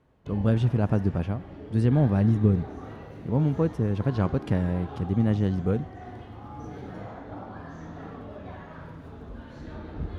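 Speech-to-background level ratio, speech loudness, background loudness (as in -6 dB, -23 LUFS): 15.5 dB, -25.5 LUFS, -41.0 LUFS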